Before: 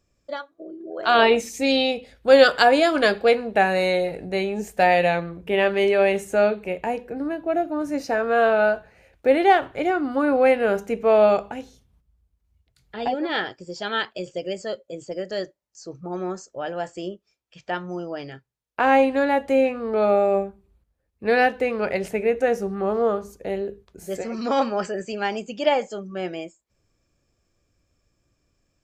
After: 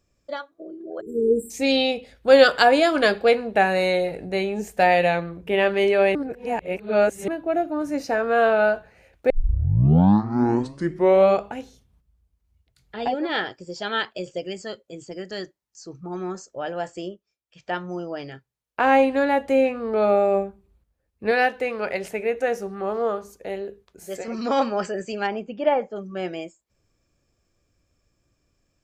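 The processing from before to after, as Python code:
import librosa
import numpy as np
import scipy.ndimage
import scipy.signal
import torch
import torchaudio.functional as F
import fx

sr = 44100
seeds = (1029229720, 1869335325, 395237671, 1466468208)

y = fx.spec_erase(x, sr, start_s=1.01, length_s=0.49, low_hz=480.0, high_hz=7400.0)
y = fx.peak_eq(y, sr, hz=570.0, db=-11.5, octaves=0.41, at=(14.44, 16.35))
y = fx.low_shelf(y, sr, hz=350.0, db=-8.5, at=(21.31, 24.28))
y = fx.lowpass(y, sr, hz=fx.line((25.26, 2300.0), (25.95, 1500.0)), slope=12, at=(25.26, 25.95), fade=0.02)
y = fx.edit(y, sr, fx.reverse_span(start_s=6.15, length_s=1.13),
    fx.tape_start(start_s=9.3, length_s=2.1),
    fx.fade_down_up(start_s=17.0, length_s=0.71, db=-9.5, fade_s=0.27), tone=tone)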